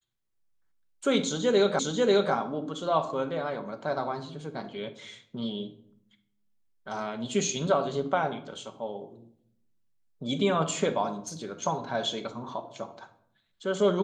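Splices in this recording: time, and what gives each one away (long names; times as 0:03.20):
0:01.79: the same again, the last 0.54 s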